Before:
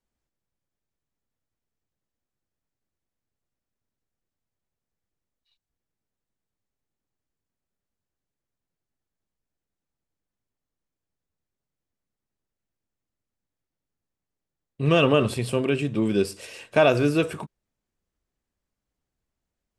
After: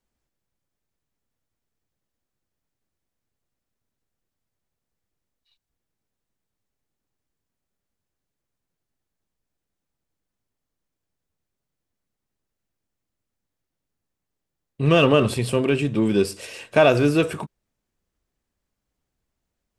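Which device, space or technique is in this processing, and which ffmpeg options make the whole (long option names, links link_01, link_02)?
parallel distortion: -filter_complex "[0:a]asplit=2[link_01][link_02];[link_02]asoftclip=type=hard:threshold=-24.5dB,volume=-13dB[link_03];[link_01][link_03]amix=inputs=2:normalize=0,volume=2dB"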